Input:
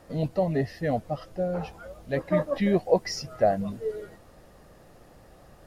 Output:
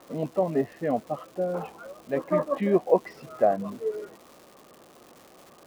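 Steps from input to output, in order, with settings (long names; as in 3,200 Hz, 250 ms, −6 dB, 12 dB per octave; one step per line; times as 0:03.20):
loudspeaker in its box 220–2,700 Hz, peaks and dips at 250 Hz +4 dB, 370 Hz +4 dB, 1,100 Hz +8 dB, 1,900 Hz −6 dB
surface crackle 420 per second −41 dBFS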